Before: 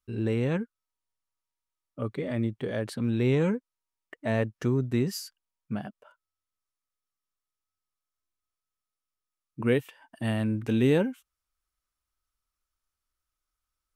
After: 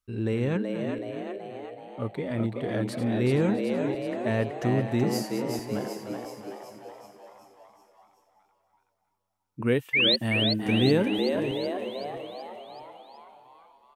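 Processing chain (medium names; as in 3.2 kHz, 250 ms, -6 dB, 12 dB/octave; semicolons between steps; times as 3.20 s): backward echo that repeats 329 ms, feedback 48%, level -10.5 dB; painted sound rise, 9.93–10.16 s, 2–4.5 kHz -22 dBFS; frequency-shifting echo 377 ms, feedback 57%, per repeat +92 Hz, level -5 dB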